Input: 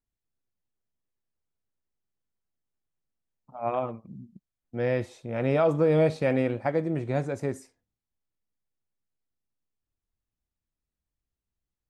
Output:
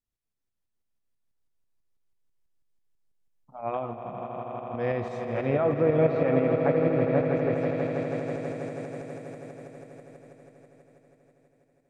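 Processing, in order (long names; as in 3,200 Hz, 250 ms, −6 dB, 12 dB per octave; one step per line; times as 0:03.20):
echo that builds up and dies away 81 ms, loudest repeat 8, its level −10.5 dB
treble cut that deepens with the level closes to 2,200 Hz, closed at −18.5 dBFS
shaped tremolo saw up 6.1 Hz, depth 45%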